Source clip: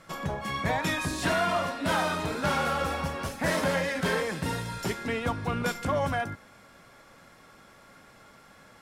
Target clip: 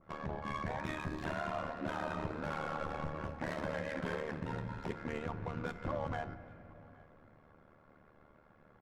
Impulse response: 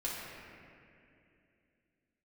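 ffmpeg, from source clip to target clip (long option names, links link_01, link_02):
-filter_complex "[0:a]tremolo=f=75:d=0.889,adynamicsmooth=sensitivity=5:basefreq=1200,asplit=2[link_01][link_02];[link_02]adelay=816.3,volume=-27dB,highshelf=frequency=4000:gain=-18.4[link_03];[link_01][link_03]amix=inputs=2:normalize=0,alimiter=level_in=0.5dB:limit=-24dB:level=0:latency=1:release=166,volume=-0.5dB,asplit=2[link_04][link_05];[1:a]atrim=start_sample=2205,lowshelf=frequency=160:gain=8[link_06];[link_05][link_06]afir=irnorm=-1:irlink=0,volume=-14.5dB[link_07];[link_04][link_07]amix=inputs=2:normalize=0,adynamicequalizer=threshold=0.00501:dfrequency=1800:dqfactor=0.7:tfrequency=1800:tqfactor=0.7:attack=5:release=100:ratio=0.375:range=2:mode=cutabove:tftype=highshelf,volume=-3.5dB"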